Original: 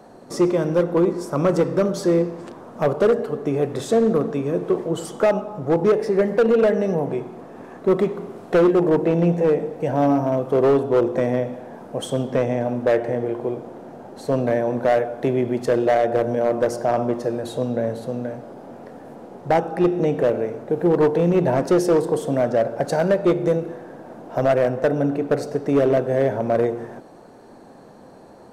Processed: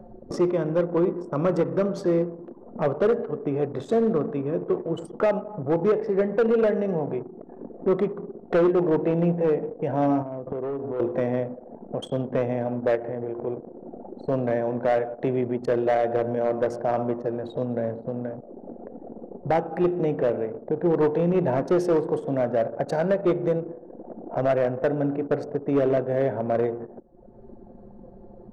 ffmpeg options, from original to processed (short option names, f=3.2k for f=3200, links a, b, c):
-filter_complex "[0:a]asettb=1/sr,asplit=3[a][b][c];[a]atrim=end=10.224[d];[b]atrim=start=10.22:end=11,asetpts=PTS-STARTPTS,afade=t=in:d=0.004:c=qsin,afade=t=out:st=0.776:d=0.004:c=qsin,acompressor=threshold=-26dB:ratio=5:attack=3.2:release=140:knee=1:detection=peak[e];[c]atrim=start=10.996[f];[d][e]acrossfade=d=0.004:c1=hsin:c2=qsin[g];[g][f]acrossfade=d=0.004:c1=qsin:c2=hsin,asettb=1/sr,asplit=3[h][i][j];[h]atrim=end=12.954[k];[i]atrim=start=12.95:end=13.47,asetpts=PTS-STARTPTS,afade=t=in:d=0.004:c=qsin,afade=t=out:st=0.516:d=0.004:c=qsin,acompressor=threshold=-25dB:ratio=2:attack=3.2:release=140:knee=1:detection=peak[l];[j]atrim=start=13.466[m];[k][l]acrossfade=d=0.004:c1=hsin:c2=qsin[n];[n][m]acrossfade=d=0.004:c1=qsin:c2=hsin,asplit=3[o][p][q];[o]atrim=end=7.402[r];[p]atrim=start=7.398:end=7.862,asetpts=PTS-STARTPTS,areverse[s];[q]atrim=start=7.858[t];[r][s]acrossfade=d=0.004:c1=hsin:c2=hsin[u];[u][t]acrossfade=d=0.004:c1=hsin:c2=hsin,anlmdn=39.8,lowpass=f=3.7k:p=1,acompressor=mode=upward:threshold=-21dB:ratio=2.5,volume=-4dB"